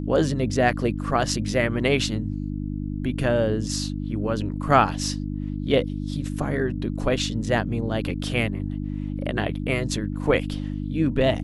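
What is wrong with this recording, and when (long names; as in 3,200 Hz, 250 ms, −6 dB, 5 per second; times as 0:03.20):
mains hum 50 Hz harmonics 6 −29 dBFS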